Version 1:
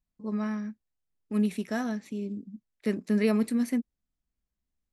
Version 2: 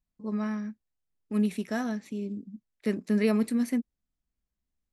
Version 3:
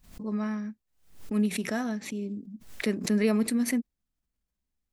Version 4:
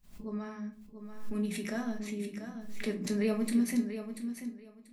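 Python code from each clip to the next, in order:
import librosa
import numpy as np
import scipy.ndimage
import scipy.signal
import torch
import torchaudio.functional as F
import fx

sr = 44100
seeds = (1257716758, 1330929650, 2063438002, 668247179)

y1 = x
y2 = fx.pre_swell(y1, sr, db_per_s=110.0)
y3 = fx.echo_feedback(y2, sr, ms=687, feedback_pct=19, wet_db=-9.5)
y3 = fx.room_shoebox(y3, sr, seeds[0], volume_m3=230.0, walls='furnished', distance_m=1.3)
y3 = y3 * 10.0 ** (-8.0 / 20.0)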